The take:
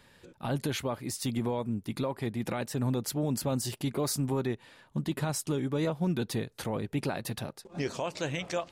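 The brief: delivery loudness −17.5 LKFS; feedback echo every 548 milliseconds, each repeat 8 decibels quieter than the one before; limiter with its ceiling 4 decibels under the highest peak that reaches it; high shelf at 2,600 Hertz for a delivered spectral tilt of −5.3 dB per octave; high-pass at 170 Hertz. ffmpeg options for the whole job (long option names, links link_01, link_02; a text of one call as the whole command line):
ffmpeg -i in.wav -af "highpass=170,highshelf=frequency=2600:gain=-5,alimiter=limit=-23.5dB:level=0:latency=1,aecho=1:1:548|1096|1644|2192|2740:0.398|0.159|0.0637|0.0255|0.0102,volume=17.5dB" out.wav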